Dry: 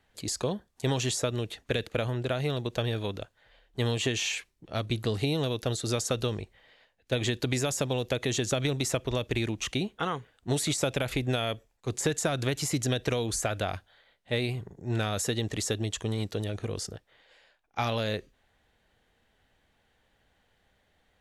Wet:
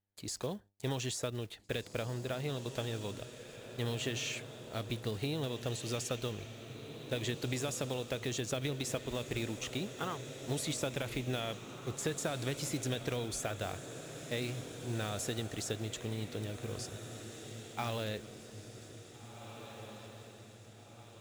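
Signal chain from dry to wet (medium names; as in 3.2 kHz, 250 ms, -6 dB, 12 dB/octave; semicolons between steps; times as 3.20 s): block-companded coder 5-bit; mains buzz 100 Hz, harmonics 9, -62 dBFS -7 dB/octave; on a send: echo that smears into a reverb 1844 ms, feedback 51%, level -9.5 dB; on the sum: gate with hold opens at -40 dBFS; trim -8 dB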